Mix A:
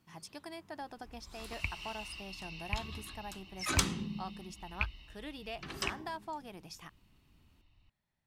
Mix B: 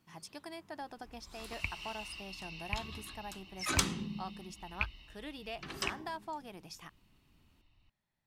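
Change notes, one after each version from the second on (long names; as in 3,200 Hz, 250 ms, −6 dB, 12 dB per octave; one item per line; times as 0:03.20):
master: add parametric band 62 Hz −3.5 dB 2.1 octaves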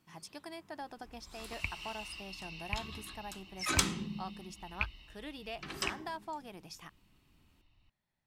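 second sound: send +9.5 dB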